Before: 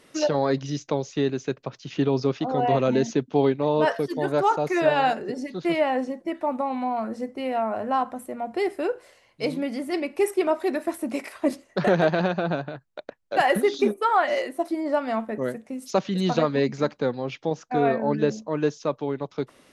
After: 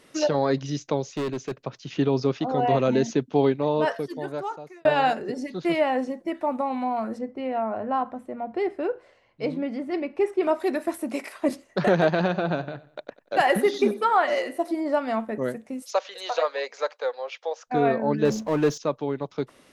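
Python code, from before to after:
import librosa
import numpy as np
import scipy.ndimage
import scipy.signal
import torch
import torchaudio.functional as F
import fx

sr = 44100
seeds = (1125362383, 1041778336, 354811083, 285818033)

y = fx.clip_hard(x, sr, threshold_db=-24.5, at=(1.05, 1.57))
y = fx.spacing_loss(y, sr, db_at_10k=21, at=(7.17, 10.42), fade=0.02)
y = fx.peak_eq(y, sr, hz=76.0, db=-12.0, octaves=1.4, at=(11.02, 11.49))
y = fx.echo_feedback(y, sr, ms=94, feedback_pct=36, wet_db=-17.5, at=(12.1, 14.85))
y = fx.ellip_highpass(y, sr, hz=500.0, order=4, stop_db=80, at=(15.82, 17.67))
y = fx.power_curve(y, sr, exponent=0.7, at=(18.25, 18.78))
y = fx.edit(y, sr, fx.fade_out_span(start_s=3.54, length_s=1.31), tone=tone)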